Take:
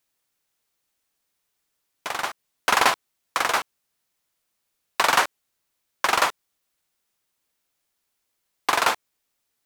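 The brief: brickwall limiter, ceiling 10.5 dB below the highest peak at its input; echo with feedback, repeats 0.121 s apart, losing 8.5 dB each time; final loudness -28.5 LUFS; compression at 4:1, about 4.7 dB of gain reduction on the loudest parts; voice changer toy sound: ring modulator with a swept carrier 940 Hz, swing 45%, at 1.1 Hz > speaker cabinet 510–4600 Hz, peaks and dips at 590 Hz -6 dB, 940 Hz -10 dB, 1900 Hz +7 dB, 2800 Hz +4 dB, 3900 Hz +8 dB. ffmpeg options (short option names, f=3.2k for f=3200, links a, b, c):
-af "acompressor=threshold=-20dB:ratio=4,alimiter=limit=-17dB:level=0:latency=1,aecho=1:1:121|242|363|484:0.376|0.143|0.0543|0.0206,aeval=exprs='val(0)*sin(2*PI*940*n/s+940*0.45/1.1*sin(2*PI*1.1*n/s))':c=same,highpass=510,equalizer=f=590:t=q:w=4:g=-6,equalizer=f=940:t=q:w=4:g=-10,equalizer=f=1.9k:t=q:w=4:g=7,equalizer=f=2.8k:t=q:w=4:g=4,equalizer=f=3.9k:t=q:w=4:g=8,lowpass=f=4.6k:w=0.5412,lowpass=f=4.6k:w=1.3066,volume=3dB"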